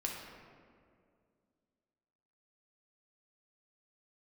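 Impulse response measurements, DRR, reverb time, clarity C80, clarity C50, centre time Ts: -1.5 dB, 2.2 s, 3.5 dB, 2.0 dB, 78 ms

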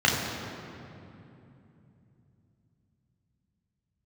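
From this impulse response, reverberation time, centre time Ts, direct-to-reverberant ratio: 2.9 s, 0.104 s, -3.5 dB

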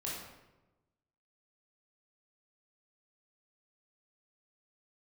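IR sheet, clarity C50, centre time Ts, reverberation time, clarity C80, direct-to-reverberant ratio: 0.5 dB, 66 ms, 1.1 s, 3.5 dB, -6.0 dB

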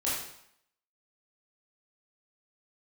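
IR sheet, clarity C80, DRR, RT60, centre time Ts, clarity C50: 4.5 dB, -8.5 dB, 0.70 s, 61 ms, 0.5 dB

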